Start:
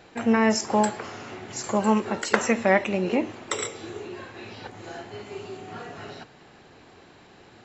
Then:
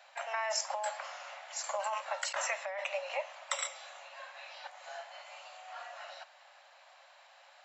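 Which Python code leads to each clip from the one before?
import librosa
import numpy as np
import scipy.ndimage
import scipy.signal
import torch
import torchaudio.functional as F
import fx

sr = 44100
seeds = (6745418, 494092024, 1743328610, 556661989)

y = scipy.signal.sosfilt(scipy.signal.cheby1(8, 1.0, 550.0, 'highpass', fs=sr, output='sos'), x)
y = fx.over_compress(y, sr, threshold_db=-27.0, ratio=-1.0)
y = F.gain(torch.from_numpy(y), -6.5).numpy()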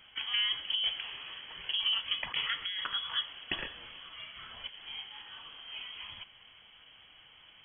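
y = fx.small_body(x, sr, hz=(390.0, 890.0), ring_ms=20, db=8)
y = fx.freq_invert(y, sr, carrier_hz=3900)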